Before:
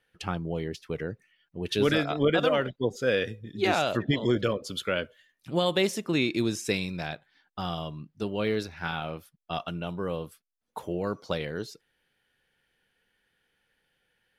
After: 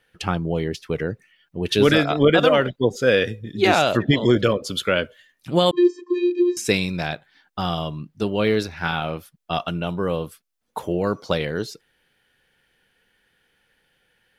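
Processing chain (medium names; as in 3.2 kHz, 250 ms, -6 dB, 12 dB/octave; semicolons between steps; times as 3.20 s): 5.71–6.57 s: vocoder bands 32, square 353 Hz; trim +8 dB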